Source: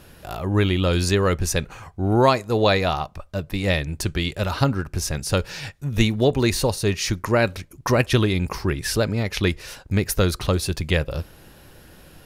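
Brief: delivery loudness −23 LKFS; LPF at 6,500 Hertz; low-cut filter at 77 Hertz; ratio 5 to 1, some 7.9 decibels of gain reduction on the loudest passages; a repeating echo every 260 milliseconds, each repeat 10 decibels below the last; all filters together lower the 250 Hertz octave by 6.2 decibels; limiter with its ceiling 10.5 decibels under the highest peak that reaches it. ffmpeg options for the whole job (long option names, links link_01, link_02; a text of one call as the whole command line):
ffmpeg -i in.wav -af "highpass=77,lowpass=6500,equalizer=frequency=250:width_type=o:gain=-9,acompressor=threshold=-22dB:ratio=5,alimiter=limit=-18.5dB:level=0:latency=1,aecho=1:1:260|520|780|1040:0.316|0.101|0.0324|0.0104,volume=6.5dB" out.wav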